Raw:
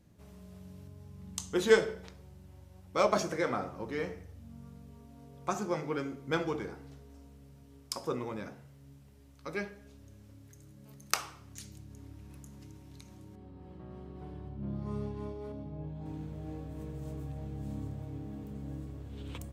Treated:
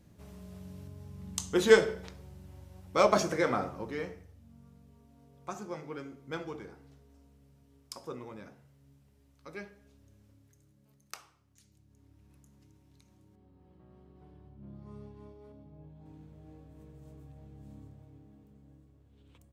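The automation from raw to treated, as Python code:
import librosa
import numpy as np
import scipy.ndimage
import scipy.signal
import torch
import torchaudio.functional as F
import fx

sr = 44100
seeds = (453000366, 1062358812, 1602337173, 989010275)

y = fx.gain(x, sr, db=fx.line((3.64, 3.0), (4.4, -7.0), (10.24, -7.0), (11.5, -18.0), (12.25, -11.0), (17.75, -11.0), (18.86, -18.0)))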